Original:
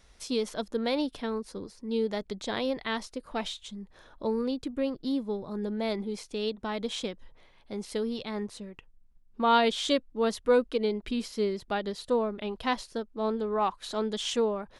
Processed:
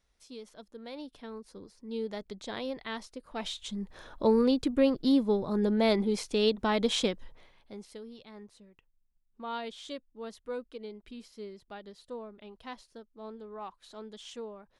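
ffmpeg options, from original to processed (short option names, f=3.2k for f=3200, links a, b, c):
-af "volume=5.5dB,afade=t=in:st=0.78:d=1.3:silence=0.316228,afade=t=in:st=3.35:d=0.47:silence=0.266073,afade=t=out:st=7.08:d=0.64:silence=0.223872,afade=t=out:st=7.72:d=0.27:silence=0.446684"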